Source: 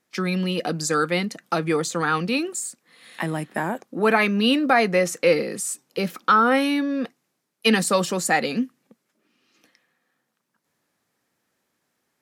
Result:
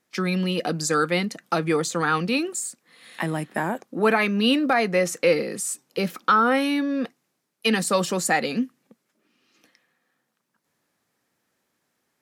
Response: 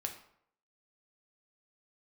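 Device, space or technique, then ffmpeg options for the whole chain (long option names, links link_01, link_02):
clipper into limiter: -af "asoftclip=type=hard:threshold=-5.5dB,alimiter=limit=-9dB:level=0:latency=1:release=445"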